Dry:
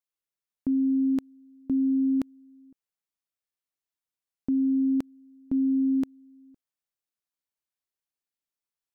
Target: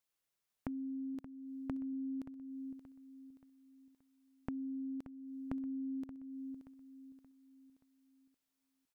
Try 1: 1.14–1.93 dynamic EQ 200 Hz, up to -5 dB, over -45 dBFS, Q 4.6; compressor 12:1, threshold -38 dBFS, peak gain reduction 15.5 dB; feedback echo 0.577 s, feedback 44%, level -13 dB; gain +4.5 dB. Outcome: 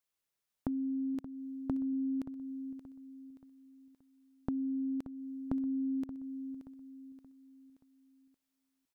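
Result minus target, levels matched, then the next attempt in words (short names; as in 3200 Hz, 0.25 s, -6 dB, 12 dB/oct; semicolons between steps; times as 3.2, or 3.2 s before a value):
compressor: peak gain reduction -6.5 dB
1.14–1.93 dynamic EQ 200 Hz, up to -5 dB, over -45 dBFS, Q 4.6; compressor 12:1, threshold -45 dBFS, peak gain reduction 22 dB; feedback echo 0.577 s, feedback 44%, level -13 dB; gain +4.5 dB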